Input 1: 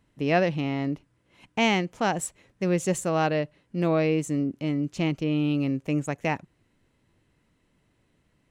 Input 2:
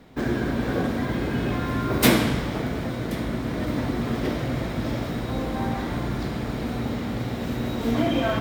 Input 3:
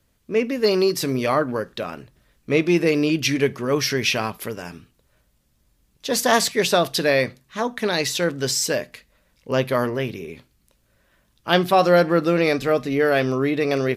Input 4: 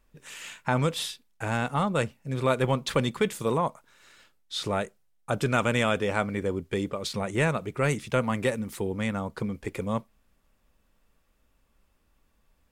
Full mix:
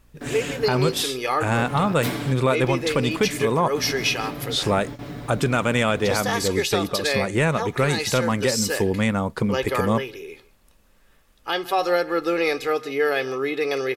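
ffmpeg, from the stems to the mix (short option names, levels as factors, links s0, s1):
-filter_complex "[0:a]aeval=exprs='val(0)+0.01*(sin(2*PI*60*n/s)+sin(2*PI*2*60*n/s)/2+sin(2*PI*3*60*n/s)/3+sin(2*PI*4*60*n/s)/4+sin(2*PI*5*60*n/s)/5)':c=same,flanger=delay=17:depth=3.1:speed=1.9,volume=0.133,asplit=2[s0][s1];[1:a]aecho=1:1:7:0.72,volume=0.398[s2];[2:a]highpass=f=540:p=1,aecho=1:1:2.4:0.67,volume=0.841,asplit=2[s3][s4];[s4]volume=0.0944[s5];[3:a]acontrast=57,volume=1.26[s6];[s1]apad=whole_len=371130[s7];[s2][s7]sidechaingate=range=0.0224:threshold=0.00178:ratio=16:detection=peak[s8];[s5]aecho=0:1:150:1[s9];[s0][s8][s3][s6][s9]amix=inputs=5:normalize=0,alimiter=limit=0.299:level=0:latency=1:release=307"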